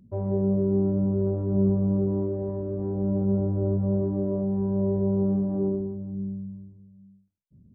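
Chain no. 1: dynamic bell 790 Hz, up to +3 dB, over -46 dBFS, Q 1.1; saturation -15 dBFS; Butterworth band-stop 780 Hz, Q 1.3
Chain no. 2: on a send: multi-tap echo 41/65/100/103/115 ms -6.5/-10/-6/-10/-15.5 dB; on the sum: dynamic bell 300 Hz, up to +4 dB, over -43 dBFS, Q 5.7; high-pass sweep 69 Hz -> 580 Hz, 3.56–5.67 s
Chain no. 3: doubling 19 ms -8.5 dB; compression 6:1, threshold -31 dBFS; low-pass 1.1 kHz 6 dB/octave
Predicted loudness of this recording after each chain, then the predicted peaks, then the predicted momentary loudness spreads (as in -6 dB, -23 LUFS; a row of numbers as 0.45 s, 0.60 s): -27.0 LUFS, -20.5 LUFS, -35.0 LUFS; -16.0 dBFS, -8.5 dBFS, -24.0 dBFS; 8 LU, 7 LU, 3 LU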